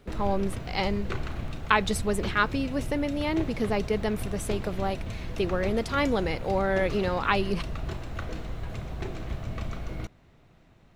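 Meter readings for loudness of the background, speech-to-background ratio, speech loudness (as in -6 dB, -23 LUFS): -36.5 LUFS, 8.0 dB, -28.5 LUFS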